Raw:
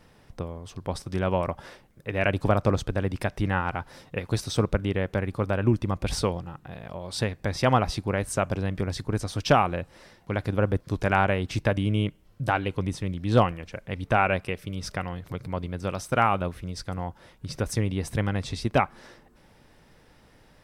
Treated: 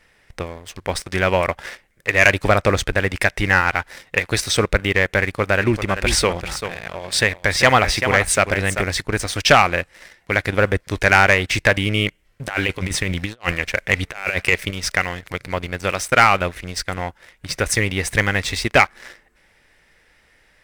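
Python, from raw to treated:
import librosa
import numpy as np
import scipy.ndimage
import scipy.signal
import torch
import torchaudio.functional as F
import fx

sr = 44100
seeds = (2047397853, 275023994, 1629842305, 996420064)

y = fx.echo_single(x, sr, ms=389, db=-9.5, at=(5.6, 8.81), fade=0.02)
y = fx.over_compress(y, sr, threshold_db=-29.0, ratio=-0.5, at=(12.48, 14.71))
y = fx.graphic_eq(y, sr, hz=(125, 250, 1000, 2000, 8000), db=(-8, -6, -4, 12, 5))
y = fx.leveller(y, sr, passes=2)
y = y * librosa.db_to_amplitude(2.0)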